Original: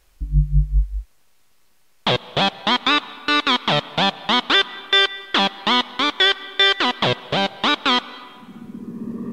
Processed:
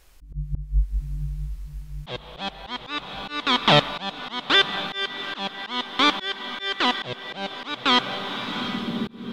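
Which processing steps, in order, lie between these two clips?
diffused feedback echo 0.764 s, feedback 49%, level -15.5 dB; auto swell 0.498 s; gain +3.5 dB

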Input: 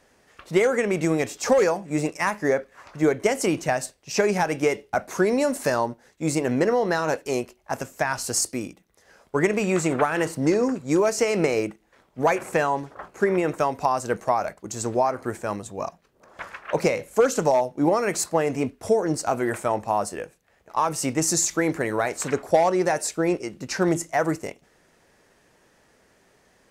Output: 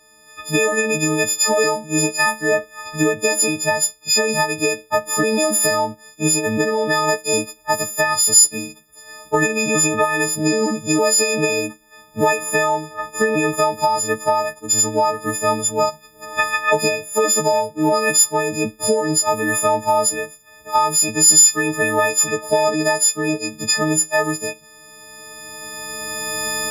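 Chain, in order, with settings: frequency quantiser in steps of 6 st; recorder AGC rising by 13 dB/s; gain -1 dB

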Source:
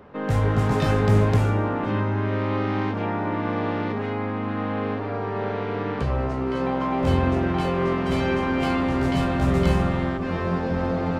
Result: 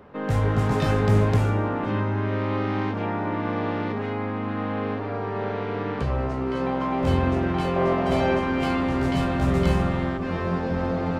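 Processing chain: 7.76–8.39 bell 670 Hz +10 dB 0.69 oct; gain -1 dB

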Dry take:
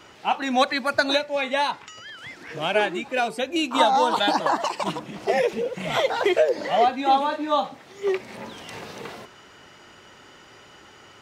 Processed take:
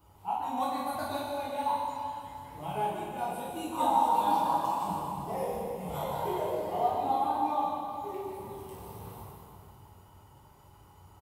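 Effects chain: EQ curve 110 Hz 0 dB, 190 Hz -13 dB, 360 Hz -17 dB, 640 Hz -17 dB, 910 Hz -7 dB, 1700 Hz -29 dB, 2400 Hz -26 dB, 4300 Hz -23 dB, 6100 Hz -23 dB, 12000 Hz +2 dB; speakerphone echo 0.35 s, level -13 dB; reverb RT60 2.5 s, pre-delay 8 ms, DRR -7.5 dB; gain -3 dB

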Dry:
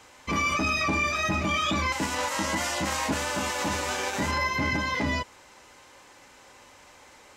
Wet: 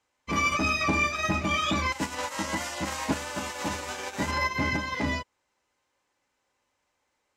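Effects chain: upward expander 2.5:1, over -42 dBFS; gain +2.5 dB

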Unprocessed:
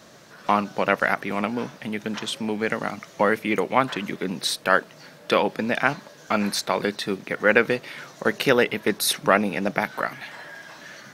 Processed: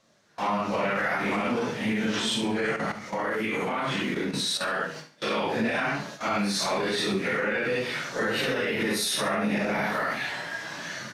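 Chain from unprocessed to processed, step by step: phase scrambler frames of 0.2 s; LPF 10000 Hz 12 dB/oct; notches 60/120/180/240/300/360/420/480 Hz; gate with hold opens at -34 dBFS; bell 730 Hz -2.5 dB 3 oct; compressor 6:1, threshold -27 dBFS, peak gain reduction 11 dB; limiter -26 dBFS, peak gain reduction 8.5 dB; 2.76–4.78 level quantiser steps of 12 dB; feedback echo 71 ms, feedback 32%, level -12.5 dB; gain +7.5 dB

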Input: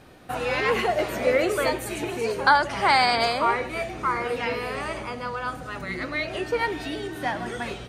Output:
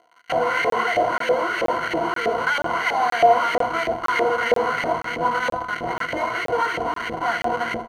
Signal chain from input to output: in parallel at 0 dB: negative-ratio compressor -28 dBFS, ratio -1; on the sum: Schmitt trigger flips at -21 dBFS; feedback echo 80 ms, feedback 37%, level -8 dB; crackle 140/s -32 dBFS; ripple EQ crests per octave 1.9, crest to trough 15 dB; on a send at -16 dB: reverb RT60 1.9 s, pre-delay 7 ms; on the sum: LFO band-pass saw up 3.1 Hz 560–2200 Hz; crackling interface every 0.48 s, samples 1024, zero, from 0.7; gain +5.5 dB

